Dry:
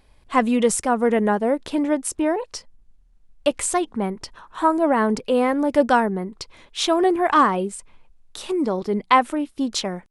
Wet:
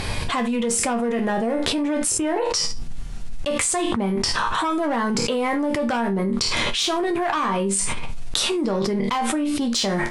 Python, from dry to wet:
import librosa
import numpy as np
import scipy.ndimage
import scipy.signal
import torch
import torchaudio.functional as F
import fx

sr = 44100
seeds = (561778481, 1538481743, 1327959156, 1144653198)

p1 = fx.diode_clip(x, sr, knee_db=-10.0)
p2 = scipy.signal.sosfilt(scipy.signal.butter(2, 9800.0, 'lowpass', fs=sr, output='sos'), p1)
p3 = fx.peak_eq(p2, sr, hz=140.0, db=6.5, octaves=0.96)
p4 = np.clip(p3, -10.0 ** (-20.0 / 20.0), 10.0 ** (-20.0 / 20.0))
p5 = p3 + (p4 * librosa.db_to_amplitude(-7.0))
p6 = fx.tilt_shelf(p5, sr, db=-3.0, hz=1300.0)
p7 = fx.resonator_bank(p6, sr, root=39, chord='major', decay_s=0.24)
y = fx.env_flatten(p7, sr, amount_pct=100)